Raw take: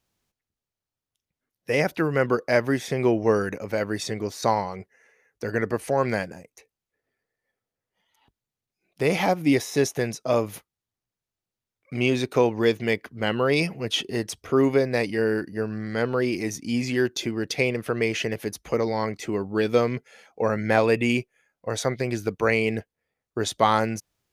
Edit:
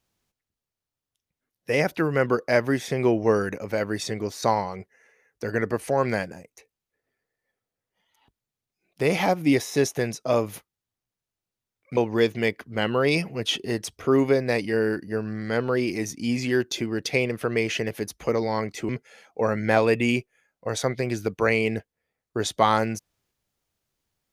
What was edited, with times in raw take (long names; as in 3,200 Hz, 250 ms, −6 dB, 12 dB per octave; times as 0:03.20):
0:11.97–0:12.42: remove
0:19.34–0:19.90: remove